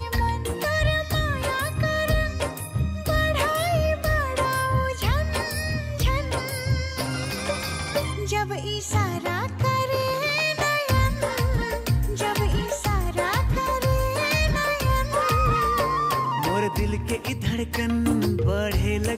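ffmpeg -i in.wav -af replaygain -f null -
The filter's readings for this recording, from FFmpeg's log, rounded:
track_gain = +6.9 dB
track_peak = 0.199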